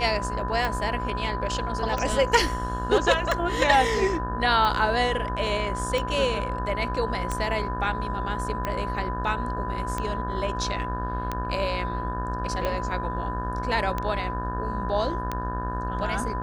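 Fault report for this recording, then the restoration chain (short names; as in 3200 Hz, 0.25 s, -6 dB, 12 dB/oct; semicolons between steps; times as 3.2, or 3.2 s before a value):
buzz 60 Hz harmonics 30 -32 dBFS
tick 45 rpm -14 dBFS
tone 1000 Hz -31 dBFS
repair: de-click; de-hum 60 Hz, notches 30; notch 1000 Hz, Q 30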